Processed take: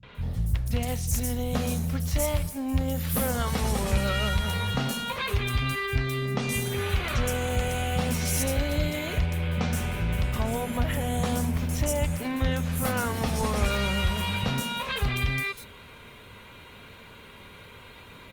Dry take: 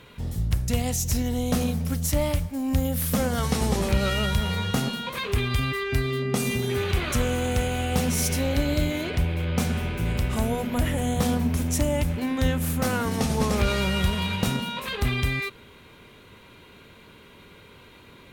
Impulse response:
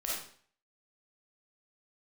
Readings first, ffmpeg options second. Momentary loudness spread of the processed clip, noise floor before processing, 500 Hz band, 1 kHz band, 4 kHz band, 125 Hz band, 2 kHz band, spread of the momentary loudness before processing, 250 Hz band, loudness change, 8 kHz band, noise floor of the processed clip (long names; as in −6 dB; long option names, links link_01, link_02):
21 LU, −50 dBFS, −3.0 dB, −0.5 dB, −1.5 dB, −1.5 dB, −0.5 dB, 3 LU, −4.5 dB, −2.0 dB, −2.0 dB, −48 dBFS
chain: -filter_complex "[0:a]acrossover=split=170|5300[link_01][link_02][link_03];[link_02]adelay=30[link_04];[link_03]adelay=150[link_05];[link_01][link_04][link_05]amix=inputs=3:normalize=0,asplit=2[link_06][link_07];[link_07]acompressor=threshold=-33dB:ratio=6,volume=2.5dB[link_08];[link_06][link_08]amix=inputs=2:normalize=0,equalizer=frequency=340:width_type=o:width=0.66:gain=-7,volume=-3.5dB" -ar 48000 -c:a libopus -b:a 32k